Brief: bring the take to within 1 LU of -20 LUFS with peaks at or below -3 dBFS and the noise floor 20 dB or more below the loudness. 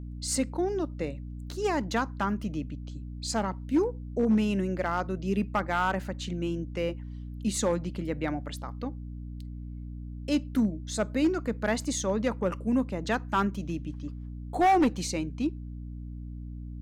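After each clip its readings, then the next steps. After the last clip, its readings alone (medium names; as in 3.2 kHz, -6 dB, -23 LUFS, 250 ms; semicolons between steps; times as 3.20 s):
clipped samples 0.7%; clipping level -18.0 dBFS; hum 60 Hz; highest harmonic 300 Hz; hum level -36 dBFS; loudness -29.5 LUFS; peak level -18.0 dBFS; loudness target -20.0 LUFS
-> clip repair -18 dBFS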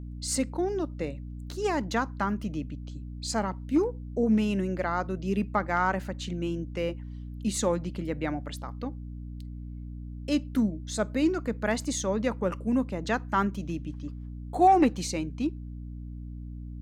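clipped samples 0.0%; hum 60 Hz; highest harmonic 300 Hz; hum level -36 dBFS
-> hum notches 60/120/180/240/300 Hz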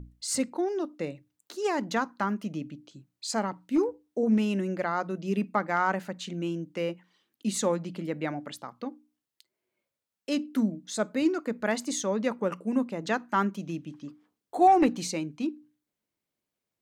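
hum not found; loudness -29.5 LUFS; peak level -10.5 dBFS; loudness target -20.0 LUFS
-> trim +9.5 dB; peak limiter -3 dBFS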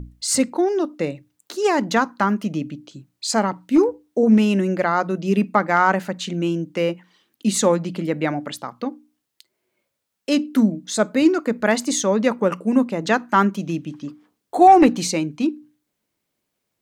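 loudness -20.0 LUFS; peak level -3.0 dBFS; noise floor -78 dBFS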